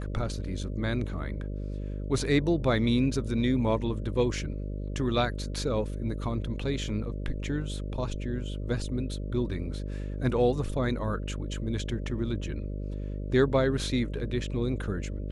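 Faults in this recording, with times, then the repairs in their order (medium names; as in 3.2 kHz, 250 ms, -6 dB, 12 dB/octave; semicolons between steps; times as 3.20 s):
buzz 50 Hz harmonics 12 -34 dBFS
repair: de-hum 50 Hz, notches 12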